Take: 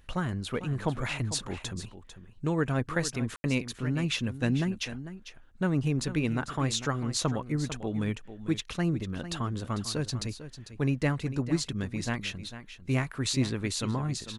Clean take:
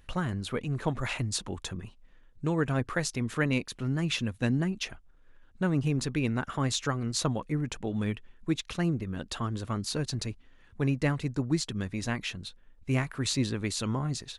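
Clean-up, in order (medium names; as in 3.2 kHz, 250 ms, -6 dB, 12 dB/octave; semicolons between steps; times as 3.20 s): room tone fill 3.36–3.44 s; inverse comb 448 ms -12.5 dB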